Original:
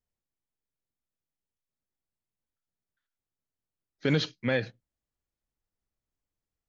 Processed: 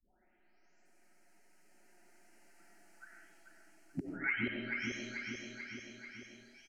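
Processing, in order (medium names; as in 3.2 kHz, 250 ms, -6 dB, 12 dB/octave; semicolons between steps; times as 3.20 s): delay that grows with frequency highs late, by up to 906 ms; Doppler pass-by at 2.74 s, 21 m/s, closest 24 m; bass shelf 110 Hz -8.5 dB; inverted gate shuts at -32 dBFS, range -26 dB; distance through air 74 m; static phaser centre 720 Hz, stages 8; feedback delay 438 ms, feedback 35%, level -8 dB; reverberation RT60 0.70 s, pre-delay 50 ms, DRR 2.5 dB; three bands compressed up and down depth 70%; trim +15.5 dB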